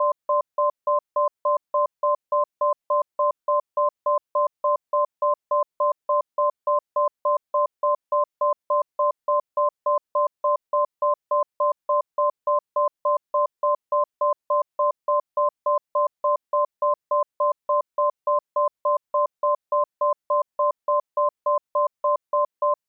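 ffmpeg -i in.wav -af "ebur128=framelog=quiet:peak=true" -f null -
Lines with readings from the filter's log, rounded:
Integrated loudness:
  I:         -24.2 LUFS
  Threshold: -34.2 LUFS
Loudness range:
  LRA:         0.4 LU
  Threshold: -44.2 LUFS
  LRA low:   -24.4 LUFS
  LRA high:  -24.0 LUFS
True peak:
  Peak:      -13.9 dBFS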